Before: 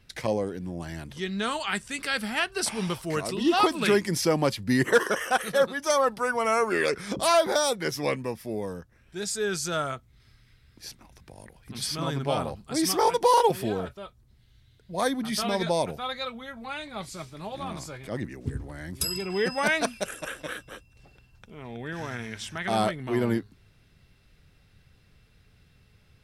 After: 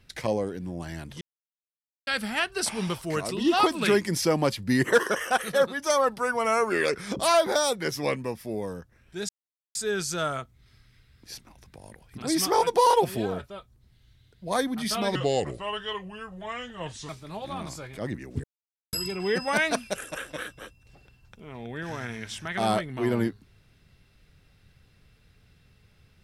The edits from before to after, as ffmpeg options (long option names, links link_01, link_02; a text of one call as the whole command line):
ffmpeg -i in.wav -filter_complex "[0:a]asplit=9[link_01][link_02][link_03][link_04][link_05][link_06][link_07][link_08][link_09];[link_01]atrim=end=1.21,asetpts=PTS-STARTPTS,afade=type=out:start_time=1.206:duration=0.004:curve=hsin[link_10];[link_02]atrim=start=1.21:end=2.07,asetpts=PTS-STARTPTS,volume=0[link_11];[link_03]atrim=start=2.07:end=9.29,asetpts=PTS-STARTPTS,afade=type=in:duration=0.004:curve=hsin,afade=type=out:start_time=7.216:duration=0.004:curve=hsin,apad=pad_dur=0.46[link_12];[link_04]atrim=start=9.29:end=11.762,asetpts=PTS-STARTPTS,afade=type=in:duration=0.004:curve=hsin[link_13];[link_05]atrim=start=12.688:end=15.624[link_14];[link_06]atrim=start=15.62:end=17.19,asetpts=PTS-STARTPTS,asetrate=35721,aresample=44100[link_15];[link_07]atrim=start=17.186:end=18.54,asetpts=PTS-STARTPTS,afade=type=out:start_time=1.35:duration=0.004:curve=hsin[link_16];[link_08]atrim=start=18.54:end=19.03,asetpts=PTS-STARTPTS,volume=0[link_17];[link_09]atrim=start=19.03,asetpts=PTS-STARTPTS,afade=type=in:duration=0.004:curve=hsin[link_18];[link_10][link_11][link_12][link_13]concat=n=4:v=0:a=1[link_19];[link_19][link_14]acrossfade=duration=0.004:curve1=hsin:curve2=hsin[link_20];[link_20][link_15]acrossfade=duration=0.004:curve1=hsin:curve2=hsin[link_21];[link_16][link_17][link_18]concat=n=3:v=0:a=1[link_22];[link_21][link_22]acrossfade=duration=0.004:curve1=hsin:curve2=hsin" out.wav